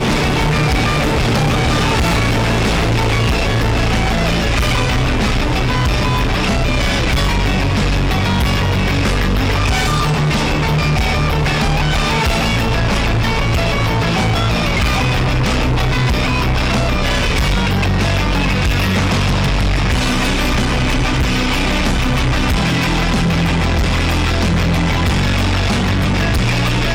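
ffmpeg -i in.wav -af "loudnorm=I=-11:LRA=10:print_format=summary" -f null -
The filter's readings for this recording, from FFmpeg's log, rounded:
Input Integrated:    -15.5 LUFS
Input True Peak:     -10.9 dBTP
Input LRA:             0.7 LU
Input Threshold:     -25.5 LUFS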